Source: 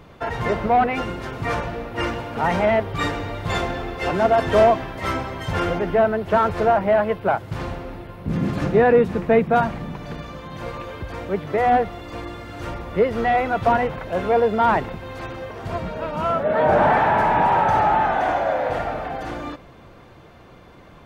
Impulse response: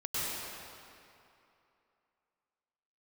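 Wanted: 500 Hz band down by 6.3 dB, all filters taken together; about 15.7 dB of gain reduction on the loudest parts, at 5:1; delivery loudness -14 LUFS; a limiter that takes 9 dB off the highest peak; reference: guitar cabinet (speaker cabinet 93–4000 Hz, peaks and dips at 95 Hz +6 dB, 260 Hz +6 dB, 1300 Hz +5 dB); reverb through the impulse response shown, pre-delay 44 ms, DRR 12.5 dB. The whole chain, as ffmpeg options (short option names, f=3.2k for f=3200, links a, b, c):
-filter_complex "[0:a]equalizer=f=500:t=o:g=-9,acompressor=threshold=-35dB:ratio=5,alimiter=level_in=6.5dB:limit=-24dB:level=0:latency=1,volume=-6.5dB,asplit=2[a][b];[1:a]atrim=start_sample=2205,adelay=44[c];[b][c]afir=irnorm=-1:irlink=0,volume=-19.5dB[d];[a][d]amix=inputs=2:normalize=0,highpass=93,equalizer=f=95:t=q:w=4:g=6,equalizer=f=260:t=q:w=4:g=6,equalizer=f=1.3k:t=q:w=4:g=5,lowpass=f=4k:w=0.5412,lowpass=f=4k:w=1.3066,volume=24dB"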